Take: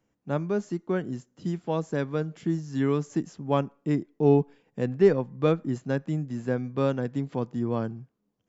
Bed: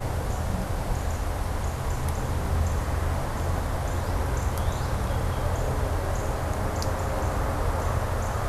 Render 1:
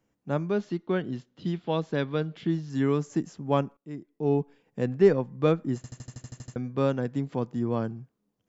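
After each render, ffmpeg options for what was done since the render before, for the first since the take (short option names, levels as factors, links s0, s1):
-filter_complex "[0:a]asettb=1/sr,asplit=3[s0][s1][s2];[s0]atrim=end=0.514[s3];[s1]atrim=start=0.51:end=2.7,asetpts=PTS-STARTPTS,afade=t=in:d=0.004:c=qsin,afade=t=out:st=2.186:d=0.004:c=qsin,lowpass=f=3700:t=q:w=2.5[s4];[s2]atrim=start=2.696[s5];[s3][s4]acrossfade=d=0.004:c1=hsin:c2=qsin[s6];[s6][s5]acrossfade=d=0.004:c1=qsin:c2=hsin,asplit=12[s7][s8][s9][s10][s11][s12][s13][s14][s15][s16][s17][s18];[s7]atrim=end=3.77,asetpts=PTS-STARTPTS,afade=t=out:st=3.766:d=0.004:c=hsin:silence=0.0841395[s19];[s8]atrim=start=3.77:end=5.842,asetpts=PTS-STARTPTS,afade=t=in:d=1.05:silence=0.0841395[s20];[s9]atrim=start=5.758:end=5.842[s21];[s10]atrim=start=5.758:end=5.842[s22];[s11]atrim=start=5.758:end=5.842[s23];[s12]atrim=start=5.758:end=5.842[s24];[s13]atrim=start=5.758:end=5.842[s25];[s14]atrim=start=5.758:end=5.842[s26];[s15]atrim=start=5.758:end=5.842[s27];[s16]atrim=start=5.758:end=5.842[s28];[s17]atrim=start=5.758:end=5.842[s29];[s18]atrim=start=6.558[s30];[s19][s20]concat=n=2:v=0:a=1[s31];[s31][s21]acrossfade=d=0.004:c1=hsin:c2=hsin[s32];[s32][s22]acrossfade=d=0.004:c1=hsin:c2=hsin[s33];[s33][s23]acrossfade=d=0.004:c1=hsin:c2=hsin[s34];[s34][s24]acrossfade=d=0.004:c1=hsin:c2=hsin[s35];[s35][s25]acrossfade=d=0.004:c1=hsin:c2=hsin[s36];[s36][s26]acrossfade=d=0.004:c1=hsin:c2=hsin[s37];[s37][s27]acrossfade=d=0.004:c1=hsin:c2=hsin[s38];[s38][s28]acrossfade=d=0.004:c1=hsin:c2=hsin[s39];[s39][s29]acrossfade=d=0.004:c1=hsin:c2=hsin[s40];[s40][s30]acrossfade=d=0.004:c1=hsin:c2=hsin"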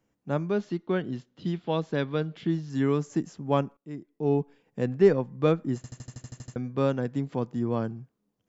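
-af anull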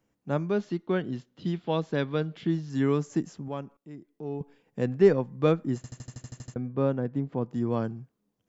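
-filter_complex "[0:a]asettb=1/sr,asplit=3[s0][s1][s2];[s0]atrim=end=3.484[s3];[s1]atrim=start=3.48:end=4.41,asetpts=PTS-STARTPTS,afade=t=in:d=0.004:c=qsin,afade=t=out:st=0.926:d=0.004:c=qsin,acompressor=threshold=0.00398:ratio=1.5:attack=3.2:release=140:knee=1:detection=peak[s4];[s2]atrim=start=4.406[s5];[s3][s4]acrossfade=d=0.004:c1=hsin:c2=qsin[s6];[s6][s5]acrossfade=d=0.004:c1=qsin:c2=hsin,asettb=1/sr,asplit=3[s7][s8][s9];[s7]atrim=end=6.544[s10];[s8]atrim=start=6.54:end=7.51,asetpts=PTS-STARTPTS,afade=t=in:d=0.004:c=qsin,afade=t=out:st=0.966:d=0.004:c=qsin,lowpass=f=1100:p=1[s11];[s9]atrim=start=7.506[s12];[s10][s11]acrossfade=d=0.004:c1=hsin:c2=qsin[s13];[s13][s12]acrossfade=d=0.004:c1=qsin:c2=hsin"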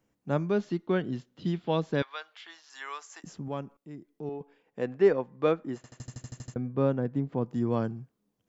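-filter_complex "[0:a]asettb=1/sr,asplit=3[s0][s1][s2];[s0]atrim=end=2.024[s3];[s1]atrim=start=2.02:end=3.24,asetpts=PTS-STARTPTS,afade=t=in:d=0.004:c=qsin,afade=t=out:st=1.216:d=0.004:c=qsin,highpass=f=850:w=0.5412,highpass=f=850:w=1.3066[s4];[s2]atrim=start=3.236[s5];[s3][s4]acrossfade=d=0.004:c1=hsin:c2=qsin[s6];[s6][s5]acrossfade=d=0.004:c1=qsin:c2=hsin,asettb=1/sr,asplit=3[s7][s8][s9];[s7]atrim=end=4.294[s10];[s8]atrim=start=4.29:end=6,asetpts=PTS-STARTPTS,afade=t=in:d=0.004:c=qsin,afade=t=out:st=1.706:d=0.004:c=qsin,bass=f=250:g=-13,treble=f=4000:g=-8[s11];[s9]atrim=start=5.996[s12];[s10][s11]acrossfade=d=0.004:c1=hsin:c2=qsin[s13];[s13][s12]acrossfade=d=0.004:c1=qsin:c2=hsin"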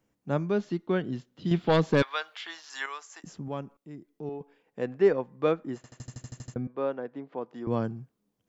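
-filter_complex "[0:a]asettb=1/sr,asplit=3[s0][s1][s2];[s0]atrim=end=1.514[s3];[s1]atrim=start=1.51:end=2.86,asetpts=PTS-STARTPTS,afade=t=in:d=0.004:c=qsin,afade=t=out:st=1.346:d=0.004:c=qsin,aeval=exprs='0.188*sin(PI/2*1.58*val(0)/0.188)':c=same[s4];[s2]atrim=start=2.856[s5];[s3][s4]acrossfade=d=0.004:c1=hsin:c2=qsin[s6];[s6][s5]acrossfade=d=0.004:c1=qsin:c2=hsin,asettb=1/sr,asplit=3[s7][s8][s9];[s7]atrim=end=6.674[s10];[s8]atrim=start=6.67:end=7.67,asetpts=PTS-STARTPTS,afade=t=in:d=0.004:c=qsin,afade=t=out:st=0.996:d=0.004:c=qsin,highpass=450,lowpass=4100[s11];[s9]atrim=start=7.666[s12];[s10][s11]acrossfade=d=0.004:c1=hsin:c2=qsin[s13];[s13][s12]acrossfade=d=0.004:c1=qsin:c2=hsin"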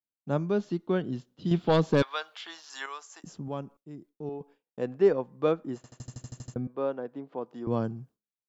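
-af "agate=range=0.0224:threshold=0.00316:ratio=3:detection=peak,equalizer=f=2000:t=o:w=0.75:g=-6"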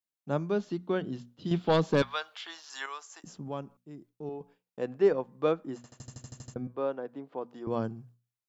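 -af "lowshelf=f=410:g=-3.5,bandreject=f=60:t=h:w=6,bandreject=f=120:t=h:w=6,bandreject=f=180:t=h:w=6,bandreject=f=240:t=h:w=6"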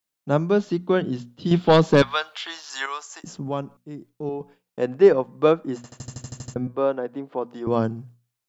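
-af "volume=2.99"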